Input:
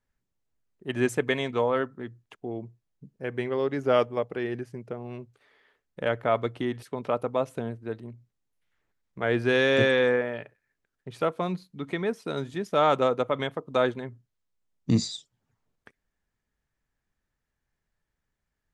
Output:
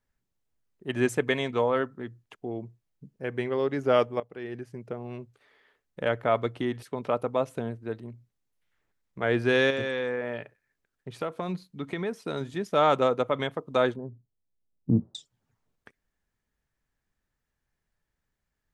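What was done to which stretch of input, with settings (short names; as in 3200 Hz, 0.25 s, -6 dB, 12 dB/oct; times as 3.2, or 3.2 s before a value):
4.2–4.9 fade in, from -15 dB
9.7–12.41 compressor, threshold -26 dBFS
13.96–15.15 Gaussian blur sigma 11 samples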